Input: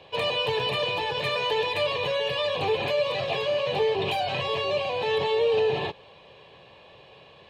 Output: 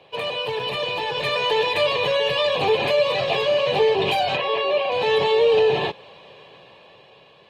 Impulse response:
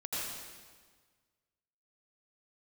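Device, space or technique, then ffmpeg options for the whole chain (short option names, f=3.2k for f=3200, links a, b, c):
video call: -filter_complex "[0:a]asettb=1/sr,asplit=3[a][b][c];[a]atrim=end=4.364[d];[b]atrim=start=4.36:end=4.92,asetpts=PTS-STARTPTS,afade=t=in:d=0.004:c=qsin,afade=t=out:st=0.556:d=0.004:c=qsin,acrossover=split=240 3800:gain=0.126 1 0.112[e][f][g];[e][f][g]amix=inputs=3:normalize=0[h];[c]atrim=start=4.916[i];[d][h]acrossfade=d=0.004:c1=hsin:c2=qsin[j];[j][i]acrossfade=d=0.004:c1=qsin:c2=hsin,highpass=130,dynaudnorm=f=220:g=11:m=6dB" -ar 48000 -c:a libopus -b:a 32k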